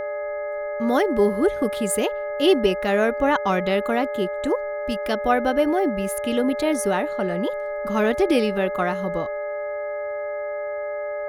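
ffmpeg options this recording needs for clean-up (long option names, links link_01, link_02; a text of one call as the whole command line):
ffmpeg -i in.wav -af "bandreject=frequency=417.9:width_type=h:width=4,bandreject=frequency=835.8:width_type=h:width=4,bandreject=frequency=1253.7:width_type=h:width=4,bandreject=frequency=1671.6:width_type=h:width=4,bandreject=frequency=2089.5:width_type=h:width=4,bandreject=frequency=590:width=30" out.wav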